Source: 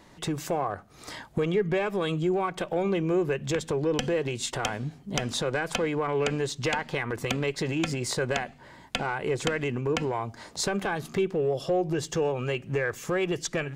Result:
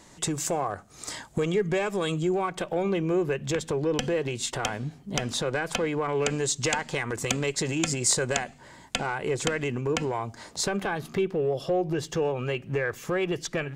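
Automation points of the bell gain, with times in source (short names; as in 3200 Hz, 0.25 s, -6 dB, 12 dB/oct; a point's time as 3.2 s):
bell 7500 Hz 0.89 oct
2.02 s +13 dB
2.72 s +2 dB
5.87 s +2 dB
6.5 s +13.5 dB
8.33 s +13.5 dB
9.22 s +6 dB
10.35 s +6 dB
10.96 s -3.5 dB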